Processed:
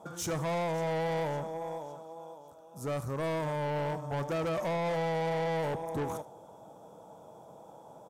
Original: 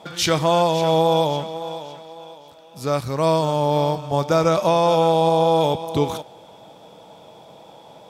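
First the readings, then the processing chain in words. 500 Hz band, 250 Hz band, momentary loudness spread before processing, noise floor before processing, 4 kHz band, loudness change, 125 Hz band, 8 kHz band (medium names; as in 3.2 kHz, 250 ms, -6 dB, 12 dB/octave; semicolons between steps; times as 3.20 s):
-13.5 dB, -13.0 dB, 14 LU, -46 dBFS, -19.0 dB, -14.0 dB, -11.0 dB, -11.5 dB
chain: high-order bell 3 kHz -15.5 dB; saturation -23 dBFS, distortion -7 dB; delay 78 ms -19 dB; trim -6.5 dB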